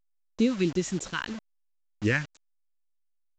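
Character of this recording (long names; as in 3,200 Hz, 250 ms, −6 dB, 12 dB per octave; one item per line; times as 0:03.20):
phaser sweep stages 2, 3.1 Hz, lowest notch 440–1,800 Hz
a quantiser's noise floor 8 bits, dither none
A-law companding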